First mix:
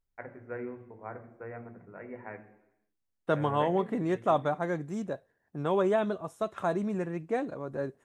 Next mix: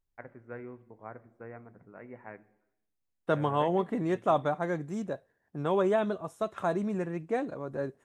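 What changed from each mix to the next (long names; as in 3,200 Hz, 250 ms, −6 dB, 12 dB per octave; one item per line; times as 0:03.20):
first voice: send −10.5 dB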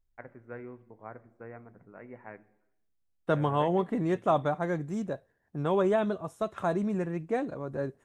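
second voice: add low-shelf EQ 120 Hz +8 dB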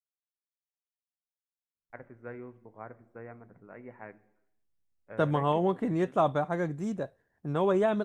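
first voice: entry +1.75 s
second voice: entry +1.90 s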